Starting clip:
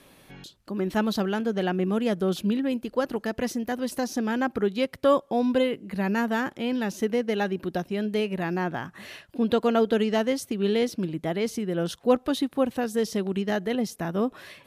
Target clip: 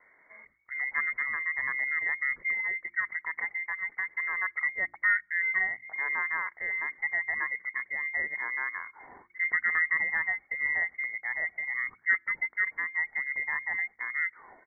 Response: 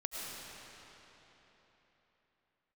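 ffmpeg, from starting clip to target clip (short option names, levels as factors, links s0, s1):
-af "lowpass=f=2600:t=q:w=0.5098,lowpass=f=2600:t=q:w=0.6013,lowpass=f=2600:t=q:w=0.9,lowpass=f=2600:t=q:w=2.563,afreqshift=-3100,bandreject=f=79.64:t=h:w=4,bandreject=f=159.28:t=h:w=4,bandreject=f=238.92:t=h:w=4,bandreject=f=318.56:t=h:w=4,bandreject=f=398.2:t=h:w=4,bandreject=f=477.84:t=h:w=4,asetrate=32097,aresample=44100,atempo=1.37395,volume=0.531"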